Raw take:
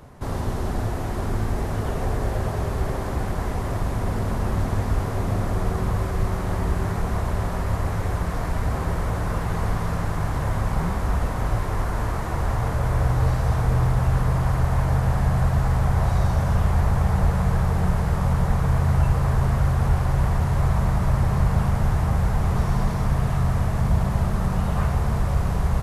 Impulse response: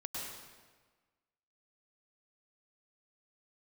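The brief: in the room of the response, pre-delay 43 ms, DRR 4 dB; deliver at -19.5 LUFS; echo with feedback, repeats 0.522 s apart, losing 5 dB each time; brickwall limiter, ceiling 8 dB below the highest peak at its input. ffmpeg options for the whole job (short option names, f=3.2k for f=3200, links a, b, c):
-filter_complex "[0:a]alimiter=limit=-16dB:level=0:latency=1,aecho=1:1:522|1044|1566|2088|2610|3132|3654:0.562|0.315|0.176|0.0988|0.0553|0.031|0.0173,asplit=2[a][b];[1:a]atrim=start_sample=2205,adelay=43[c];[b][c]afir=irnorm=-1:irlink=0,volume=-5dB[d];[a][d]amix=inputs=2:normalize=0,volume=4dB"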